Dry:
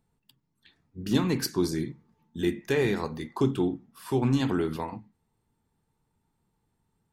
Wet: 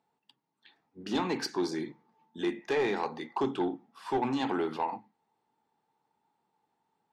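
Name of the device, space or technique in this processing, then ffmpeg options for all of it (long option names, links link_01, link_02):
intercom: -af "highpass=320,lowpass=5000,equalizer=frequency=820:width_type=o:width=0.4:gain=10,asoftclip=type=tanh:threshold=-21dB"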